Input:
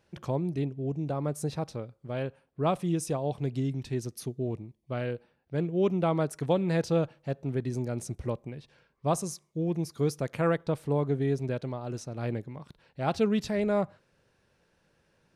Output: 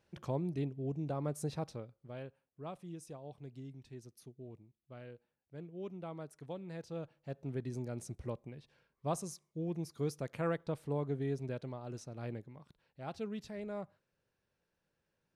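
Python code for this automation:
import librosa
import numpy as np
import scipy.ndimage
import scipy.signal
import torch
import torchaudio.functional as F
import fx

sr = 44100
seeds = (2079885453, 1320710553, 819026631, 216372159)

y = fx.gain(x, sr, db=fx.line((1.64, -6.0), (2.6, -18.0), (6.87, -18.0), (7.43, -8.5), (12.08, -8.5), (13.12, -15.0)))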